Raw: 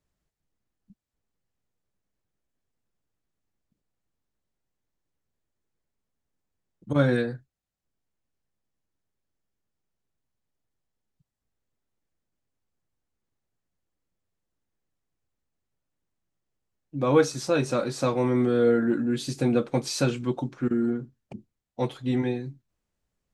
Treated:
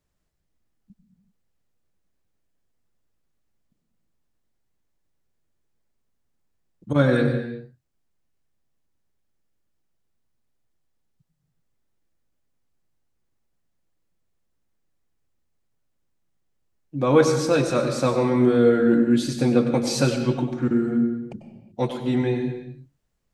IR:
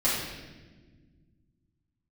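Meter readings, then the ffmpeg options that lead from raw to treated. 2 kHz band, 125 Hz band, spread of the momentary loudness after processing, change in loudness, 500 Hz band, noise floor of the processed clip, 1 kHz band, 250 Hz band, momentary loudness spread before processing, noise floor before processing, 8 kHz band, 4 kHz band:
+4.0 dB, +4.0 dB, 13 LU, +4.5 dB, +4.0 dB, -74 dBFS, +4.0 dB, +5.0 dB, 12 LU, -84 dBFS, +3.5 dB, +4.0 dB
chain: -filter_complex "[0:a]asplit=2[a][b];[1:a]atrim=start_sample=2205,afade=t=out:st=0.35:d=0.01,atrim=end_sample=15876,adelay=91[c];[b][c]afir=irnorm=-1:irlink=0,volume=-18dB[d];[a][d]amix=inputs=2:normalize=0,volume=3dB"

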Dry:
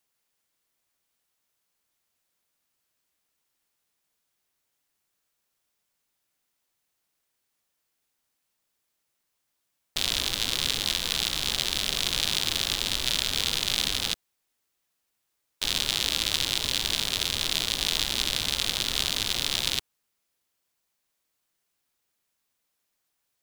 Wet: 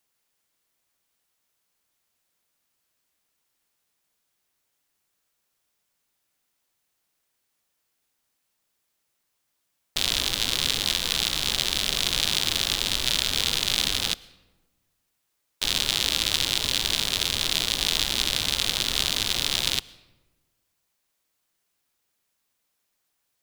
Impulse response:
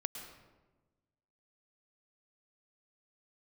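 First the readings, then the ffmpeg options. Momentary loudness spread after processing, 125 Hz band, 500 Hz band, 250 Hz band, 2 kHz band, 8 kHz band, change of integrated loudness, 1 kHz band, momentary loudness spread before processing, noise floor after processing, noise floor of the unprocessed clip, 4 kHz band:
2 LU, +2.5 dB, +2.5 dB, +2.5 dB, +2.5 dB, +2.5 dB, +2.5 dB, +2.5 dB, 2 LU, -77 dBFS, -79 dBFS, +2.5 dB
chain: -filter_complex "[0:a]asplit=2[a][b];[1:a]atrim=start_sample=2205[c];[b][c]afir=irnorm=-1:irlink=0,volume=-14.5dB[d];[a][d]amix=inputs=2:normalize=0,volume=1dB"

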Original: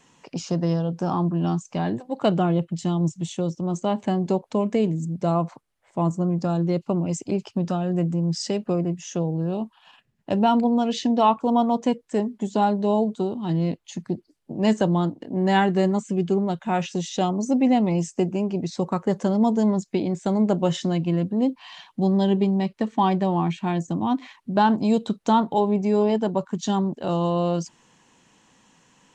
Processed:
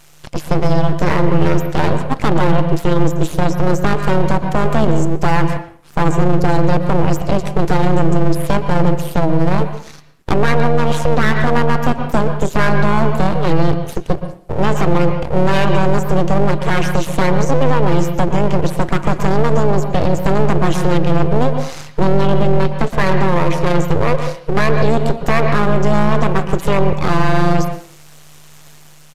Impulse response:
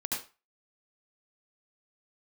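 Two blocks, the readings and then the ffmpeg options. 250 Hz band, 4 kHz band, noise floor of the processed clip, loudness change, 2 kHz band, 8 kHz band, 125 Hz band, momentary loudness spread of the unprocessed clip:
+4.0 dB, +6.5 dB, -40 dBFS, +7.0 dB, +15.5 dB, +5.5 dB, +10.0 dB, 7 LU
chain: -filter_complex "[0:a]acrossover=split=2600[a][b];[b]acompressor=threshold=-51dB:ratio=4:attack=1:release=60[c];[a][c]amix=inputs=2:normalize=0,highshelf=f=3.8k:g=10,dynaudnorm=f=260:g=5:m=4dB,aeval=exprs='abs(val(0))':c=same,tremolo=f=150:d=0.621,asplit=2[d][e];[1:a]atrim=start_sample=2205,asetrate=26901,aresample=44100,lowpass=3.6k[f];[e][f]afir=irnorm=-1:irlink=0,volume=-17dB[g];[d][g]amix=inputs=2:normalize=0,aresample=32000,aresample=44100,alimiter=level_in=13dB:limit=-1dB:release=50:level=0:latency=1,volume=-1dB"

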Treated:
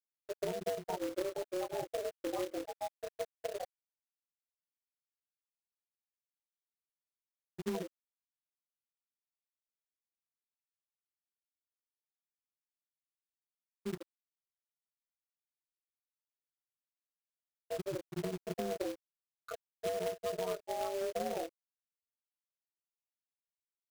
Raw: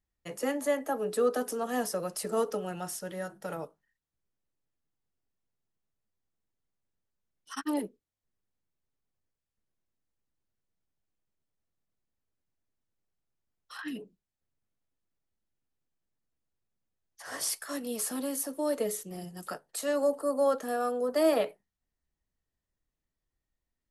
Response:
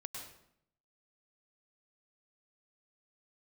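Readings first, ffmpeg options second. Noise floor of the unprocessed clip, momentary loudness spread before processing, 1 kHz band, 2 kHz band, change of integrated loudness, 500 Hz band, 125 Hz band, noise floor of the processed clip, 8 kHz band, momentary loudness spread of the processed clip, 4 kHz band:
under -85 dBFS, 14 LU, -7.0 dB, -9.5 dB, -8.0 dB, -7.5 dB, -1.5 dB, under -85 dBFS, -14.5 dB, 11 LU, -7.0 dB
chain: -filter_complex "[0:a]highpass=f=260:w=0.5412,highpass=f=260:w=1.3066,asplit=2[a][b];[b]aecho=0:1:26|37:0.631|0.178[c];[a][c]amix=inputs=2:normalize=0,afftfilt=real='re*gte(hypot(re,im),0.126)':imag='im*gte(hypot(re,im),0.126)':win_size=1024:overlap=0.75,lowpass=f=1.1k:w=0.5412,lowpass=f=1.1k:w=1.3066,acrusher=bits=8:mix=0:aa=0.5,acompressor=threshold=-39dB:ratio=12,aeval=exprs='val(0)*sin(2*PI*95*n/s)':c=same,acrusher=bits=2:mode=log:mix=0:aa=0.000001,volume=7.5dB"

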